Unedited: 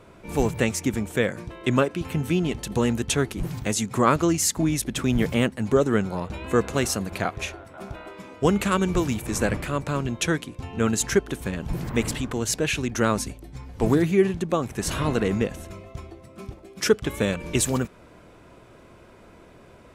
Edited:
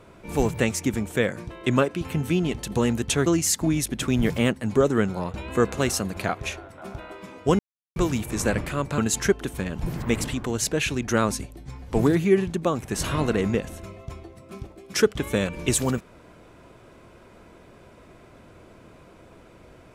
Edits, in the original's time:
0:03.26–0:04.22: remove
0:08.55–0:08.92: silence
0:09.94–0:10.85: remove

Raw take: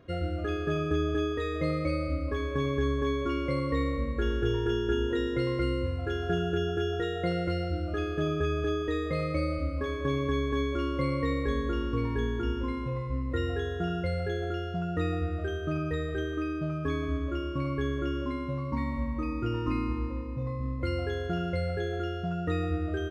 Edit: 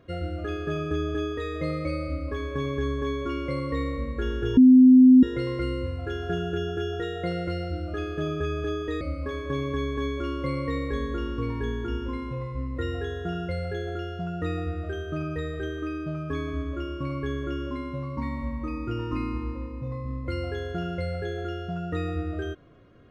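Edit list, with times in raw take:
0:04.57–0:05.23: beep over 256 Hz −9.5 dBFS
0:09.01–0:09.56: remove

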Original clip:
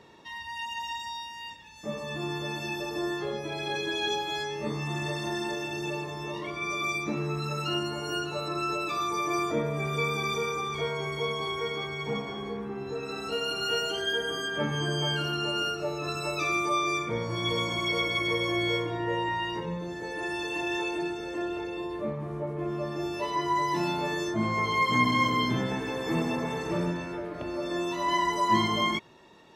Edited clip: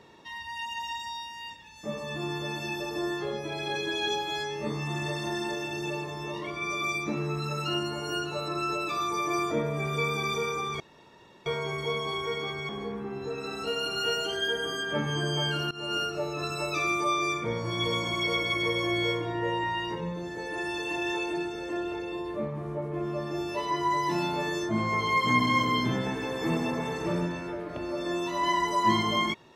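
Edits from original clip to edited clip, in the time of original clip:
0:10.80: splice in room tone 0.66 s
0:12.03–0:12.34: remove
0:15.36–0:15.61: fade in, from −19.5 dB

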